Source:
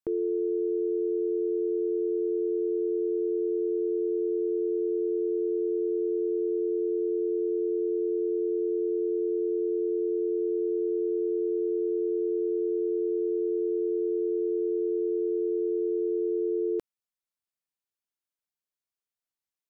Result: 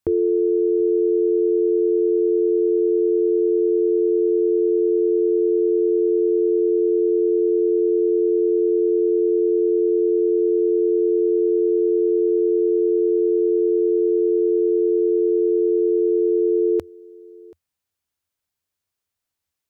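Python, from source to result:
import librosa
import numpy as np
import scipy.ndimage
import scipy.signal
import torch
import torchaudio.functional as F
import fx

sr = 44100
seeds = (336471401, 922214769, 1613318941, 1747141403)

y = fx.peak_eq(x, sr, hz=83.0, db=15.0, octaves=0.67)
y = y + 10.0 ** (-24.0 / 20.0) * np.pad(y, (int(732 * sr / 1000.0), 0))[:len(y)]
y = y * 10.0 ** (9.0 / 20.0)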